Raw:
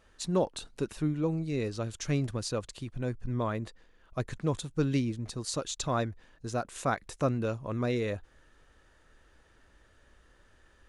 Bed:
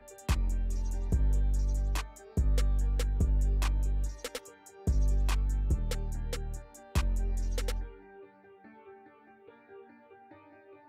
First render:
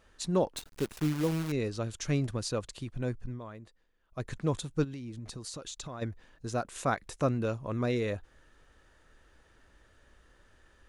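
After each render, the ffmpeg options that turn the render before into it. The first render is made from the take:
-filter_complex "[0:a]asettb=1/sr,asplit=3[s0][s1][s2];[s0]atrim=end=0.554[s3];[s1]atrim=start=0.55:end=1.52,asetpts=PTS-STARTPTS,afade=t=in:d=0.004:c=qsin,afade=t=out:st=0.966:d=0.004:c=qsin,acrusher=bits=7:dc=4:mix=0:aa=0.000001[s4];[s2]atrim=start=1.516[s5];[s3][s4]acrossfade=d=0.004:c1=hsin:c2=qsin[s6];[s6][s5]acrossfade=d=0.004:c1=qsin:c2=hsin,asplit=3[s7][s8][s9];[s7]afade=t=out:st=4.83:d=0.02[s10];[s8]acompressor=threshold=0.0141:ratio=12:attack=3.2:release=140:knee=1:detection=peak,afade=t=in:st=4.83:d=0.02,afade=t=out:st=6.01:d=0.02[s11];[s9]afade=t=in:st=6.01:d=0.02[s12];[s10][s11][s12]amix=inputs=3:normalize=0,asplit=3[s13][s14][s15];[s13]atrim=end=3.4,asetpts=PTS-STARTPTS,afade=t=out:st=3.18:d=0.22:silence=0.223872[s16];[s14]atrim=start=3.4:end=4.09,asetpts=PTS-STARTPTS,volume=0.224[s17];[s15]atrim=start=4.09,asetpts=PTS-STARTPTS,afade=t=in:d=0.22:silence=0.223872[s18];[s16][s17][s18]concat=n=3:v=0:a=1"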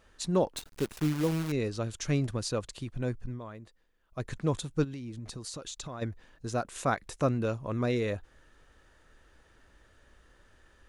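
-af "volume=1.12"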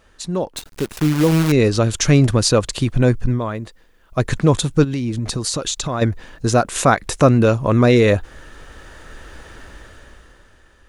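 -filter_complex "[0:a]asplit=2[s0][s1];[s1]alimiter=level_in=1.26:limit=0.0631:level=0:latency=1:release=165,volume=0.794,volume=1.41[s2];[s0][s2]amix=inputs=2:normalize=0,dynaudnorm=f=130:g=17:m=6.31"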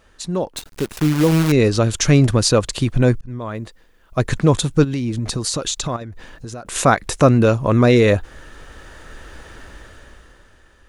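-filter_complex "[0:a]asettb=1/sr,asplit=3[s0][s1][s2];[s0]atrim=end=5.964[s3];[s1]atrim=start=5.96:end=6.66,asetpts=PTS-STARTPTS,afade=t=in:d=0.004:c=qsin,afade=t=out:st=0.696:d=0.004:c=qsin,acompressor=threshold=0.0355:ratio=8:attack=3.2:release=140:knee=1:detection=peak[s4];[s2]atrim=start=6.656[s5];[s3][s4]acrossfade=d=0.004:c1=hsin:c2=qsin[s6];[s6][s5]acrossfade=d=0.004:c1=qsin:c2=hsin,asplit=2[s7][s8];[s7]atrim=end=3.21,asetpts=PTS-STARTPTS,afade=t=out:st=3.206:d=0.004:c=hsin[s9];[s8]atrim=start=3.21,asetpts=PTS-STARTPTS,afade=t=in:d=0.4[s10];[s9][s10]concat=n=2:v=0:a=1"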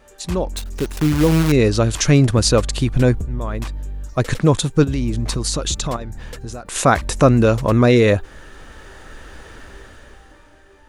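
-filter_complex "[1:a]volume=1.19[s0];[0:a][s0]amix=inputs=2:normalize=0"

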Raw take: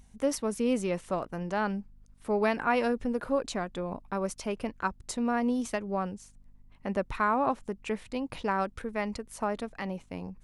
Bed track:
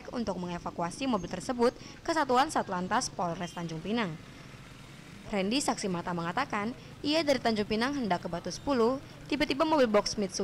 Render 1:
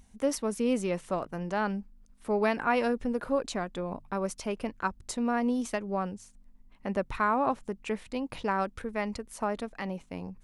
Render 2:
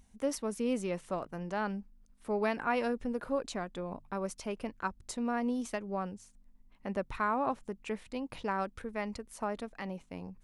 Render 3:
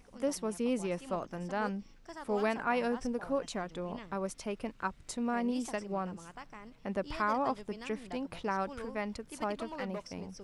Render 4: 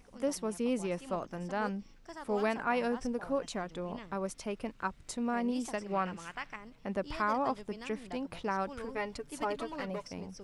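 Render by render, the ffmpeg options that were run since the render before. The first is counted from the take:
-af "bandreject=f=50:t=h:w=4,bandreject=f=100:t=h:w=4,bandreject=f=150:t=h:w=4"
-af "volume=0.596"
-filter_complex "[1:a]volume=0.133[s0];[0:a][s0]amix=inputs=2:normalize=0"
-filter_complex "[0:a]asettb=1/sr,asplit=3[s0][s1][s2];[s0]atrim=end=5.864[s3];[s1]atrim=start=5.86:end=6.56,asetpts=PTS-STARTPTS,afade=t=in:d=0.004:c=qsin,afade=t=out:st=0.696:d=0.004:c=qsin,equalizer=f=2200:t=o:w=1.9:g=12.5[s4];[s2]atrim=start=6.556[s5];[s3][s4]acrossfade=d=0.004:c1=hsin:c2=qsin[s6];[s6][s5]acrossfade=d=0.004:c1=qsin:c2=hsin,asettb=1/sr,asplit=3[s7][s8][s9];[s7]atrim=end=8.884[s10];[s8]atrim=start=8.88:end=10.08,asetpts=PTS-STARTPTS,afade=t=in:d=0.004:c=qsin,afade=t=out:st=1.196:d=0.004:c=qsin,aecho=1:1:7:0.64,atrim=end_sample=52920[s11];[s9]atrim=start=10.076[s12];[s10][s11]acrossfade=d=0.004:c1=hsin:c2=qsin[s13];[s13][s12]acrossfade=d=0.004:c1=qsin:c2=hsin"

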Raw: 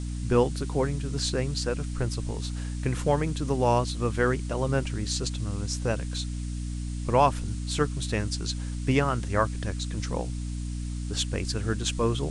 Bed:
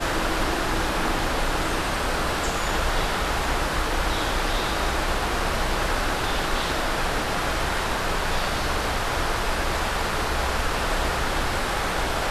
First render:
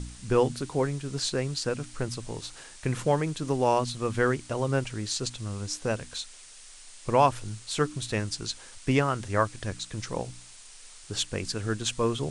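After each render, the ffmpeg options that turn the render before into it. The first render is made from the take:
-af "bandreject=f=60:t=h:w=4,bandreject=f=120:t=h:w=4,bandreject=f=180:t=h:w=4,bandreject=f=240:t=h:w=4,bandreject=f=300:t=h:w=4"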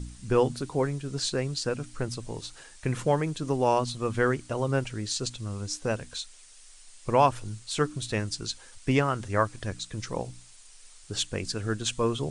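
-af "afftdn=nr=6:nf=-49"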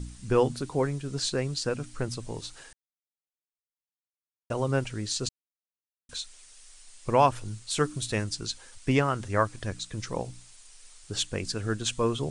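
-filter_complex "[0:a]asettb=1/sr,asplit=3[s0][s1][s2];[s0]atrim=end=7.704[s3];[s1]atrim=start=7.7:end=8.24,asetpts=PTS-STARTPTS,afade=t=in:d=0.004:c=qsin,afade=t=out:st=0.536:d=0.004:c=qsin,highshelf=f=8500:g=8[s4];[s2]atrim=start=8.236[s5];[s3][s4]acrossfade=d=0.004:c1=hsin:c2=qsin[s6];[s6][s5]acrossfade=d=0.004:c1=qsin:c2=hsin,asplit=5[s7][s8][s9][s10][s11];[s7]atrim=end=2.73,asetpts=PTS-STARTPTS,afade=t=out:st=2.726:d=0.004:c=hsin[s12];[s8]atrim=start=2.73:end=4.5,asetpts=PTS-STARTPTS,volume=0[s13];[s9]atrim=start=4.5:end=5.29,asetpts=PTS-STARTPTS,afade=t=in:d=0.004:c=hsin,afade=t=out:st=0.786:d=0.004:c=hsin[s14];[s10]atrim=start=5.29:end=6.09,asetpts=PTS-STARTPTS,volume=0[s15];[s11]atrim=start=6.09,asetpts=PTS-STARTPTS,afade=t=in:d=0.004:c=hsin[s16];[s12][s13][s14][s15][s16]concat=n=5:v=0:a=1"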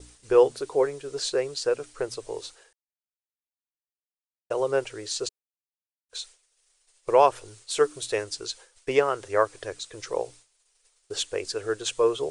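-af "agate=range=0.0224:threshold=0.01:ratio=3:detection=peak,lowshelf=f=300:t=q:w=3:g=-12"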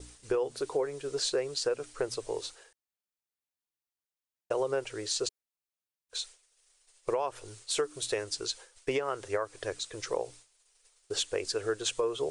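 -af "alimiter=limit=0.158:level=0:latency=1:release=252,acompressor=threshold=0.0447:ratio=3"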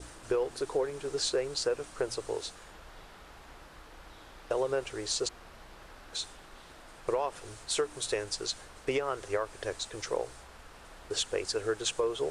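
-filter_complex "[1:a]volume=0.0447[s0];[0:a][s0]amix=inputs=2:normalize=0"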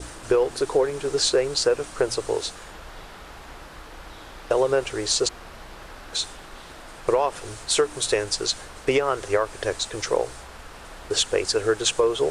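-af "volume=2.99"

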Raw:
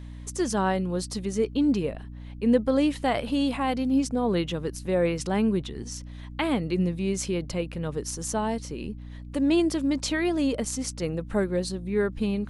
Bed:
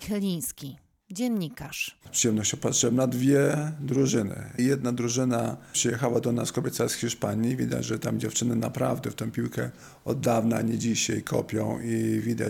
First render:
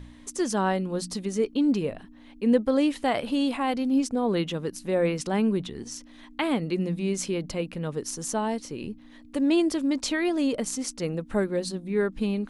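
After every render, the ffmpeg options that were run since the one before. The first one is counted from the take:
-af "bandreject=f=60:t=h:w=4,bandreject=f=120:t=h:w=4,bandreject=f=180:t=h:w=4"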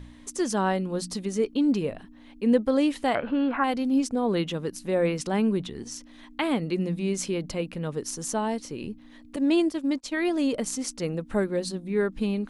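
-filter_complex "[0:a]asettb=1/sr,asplit=3[s0][s1][s2];[s0]atrim=end=3.154[s3];[s1]atrim=start=3.15:end=3.64,asetpts=PTS-STARTPTS,afade=t=in:d=0.004:c=qsin,afade=t=out:st=0.486:d=0.004:c=qsin,lowpass=f=1500:t=q:w=6.4[s4];[s2]atrim=start=3.636[s5];[s3][s4]acrossfade=d=0.004:c1=hsin:c2=qsin[s6];[s6][s5]acrossfade=d=0.004:c1=qsin:c2=hsin,asettb=1/sr,asplit=3[s7][s8][s9];[s7]atrim=end=9.364[s10];[s8]atrim=start=9.36:end=10.17,asetpts=PTS-STARTPTS,afade=t=in:d=0.004:c=qsin,afade=t=out:st=0.806:d=0.004:c=qsin,agate=range=0.0224:threshold=0.0631:ratio=3:release=100:detection=peak[s11];[s9]atrim=start=10.166[s12];[s10][s11]acrossfade=d=0.004:c1=hsin:c2=qsin[s13];[s13][s12]acrossfade=d=0.004:c1=qsin:c2=hsin"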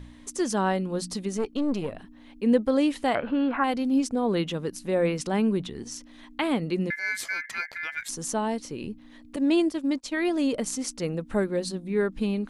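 -filter_complex "[0:a]asettb=1/sr,asplit=3[s0][s1][s2];[s0]atrim=end=1.374[s3];[s1]atrim=start=1.37:end=1.93,asetpts=PTS-STARTPTS,afade=t=in:d=0.004:c=qsin,afade=t=out:st=0.556:d=0.004:c=qsin,aeval=exprs='(tanh(11.2*val(0)+0.6)-tanh(0.6))/11.2':c=same[s4];[s2]atrim=start=1.926[s5];[s3][s4]acrossfade=d=0.004:c1=hsin:c2=qsin[s6];[s6][s5]acrossfade=d=0.004:c1=qsin:c2=hsin,asettb=1/sr,asplit=3[s7][s8][s9];[s7]atrim=end=6.904[s10];[s8]atrim=start=6.9:end=8.09,asetpts=PTS-STARTPTS,afade=t=in:d=0.004:c=qsin,afade=t=out:st=1.186:d=0.004:c=qsin,aeval=exprs='val(0)*sin(2*PI*1900*n/s)':c=same[s11];[s9]atrim=start=8.086[s12];[s10][s11]acrossfade=d=0.004:c1=hsin:c2=qsin[s13];[s13][s12]acrossfade=d=0.004:c1=qsin:c2=hsin"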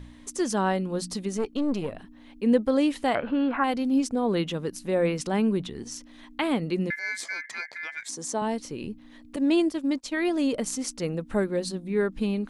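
-filter_complex "[0:a]asettb=1/sr,asplit=3[s0][s1][s2];[s0]atrim=end=6.994[s3];[s1]atrim=start=6.99:end=8.42,asetpts=PTS-STARTPTS,afade=t=in:d=0.004:c=qsin,afade=t=out:st=1.426:d=0.004:c=qsin,highpass=180,equalizer=f=190:t=q:w=4:g=-5,equalizer=f=1400:t=q:w=4:g=-6,equalizer=f=2800:t=q:w=4:g=-7,lowpass=f=9300:w=0.5412,lowpass=f=9300:w=1.3066[s4];[s2]atrim=start=8.416[s5];[s3][s4]acrossfade=d=0.004:c1=hsin:c2=qsin[s6];[s6][s5]acrossfade=d=0.004:c1=qsin:c2=hsin"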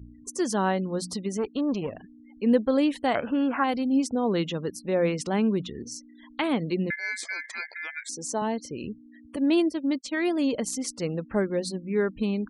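-af "highpass=44,afftfilt=real='re*gte(hypot(re,im),0.00631)':imag='im*gte(hypot(re,im),0.00631)':win_size=1024:overlap=0.75"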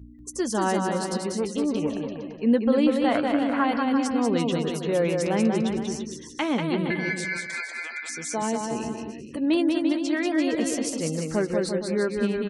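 -filter_complex "[0:a]asplit=2[s0][s1];[s1]adelay=13,volume=0.251[s2];[s0][s2]amix=inputs=2:normalize=0,asplit=2[s3][s4];[s4]aecho=0:1:190|342|463.6|560.9|638.7:0.631|0.398|0.251|0.158|0.1[s5];[s3][s5]amix=inputs=2:normalize=0"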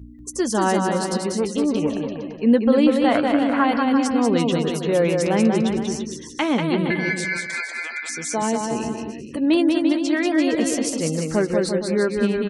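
-af "volume=1.68"

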